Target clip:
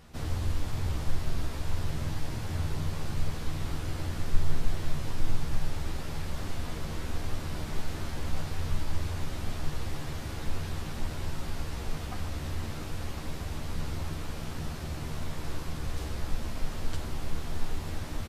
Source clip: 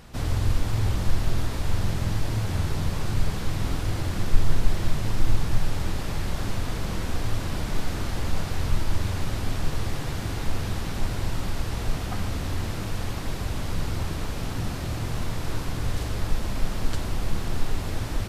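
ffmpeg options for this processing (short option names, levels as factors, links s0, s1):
-filter_complex "[0:a]asplit=2[s0][s1];[s1]adelay=13,volume=0.562[s2];[s0][s2]amix=inputs=2:normalize=0,volume=0.422"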